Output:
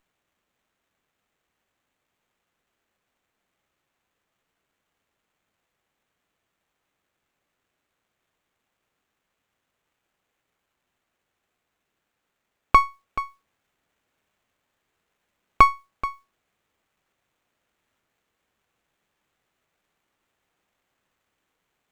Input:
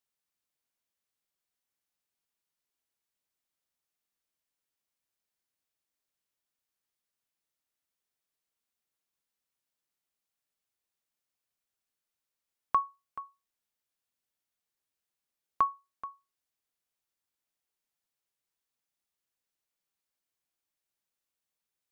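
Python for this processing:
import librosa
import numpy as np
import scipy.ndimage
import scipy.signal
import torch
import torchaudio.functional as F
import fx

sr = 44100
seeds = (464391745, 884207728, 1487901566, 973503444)

p1 = fx.notch(x, sr, hz=960.0, q=5.8)
p2 = fx.rider(p1, sr, range_db=3, speed_s=0.5)
p3 = p1 + F.gain(torch.from_numpy(p2), 1.5).numpy()
p4 = fx.running_max(p3, sr, window=9)
y = F.gain(torch.from_numpy(p4), 7.0).numpy()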